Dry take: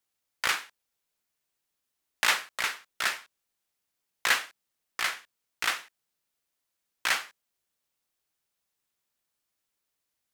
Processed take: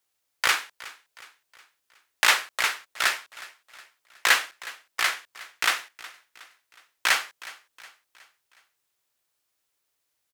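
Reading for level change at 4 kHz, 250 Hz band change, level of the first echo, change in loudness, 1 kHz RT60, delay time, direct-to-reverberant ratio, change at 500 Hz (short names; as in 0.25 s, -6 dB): +5.0 dB, +1.5 dB, -19.0 dB, +4.5 dB, none, 0.366 s, none, +4.5 dB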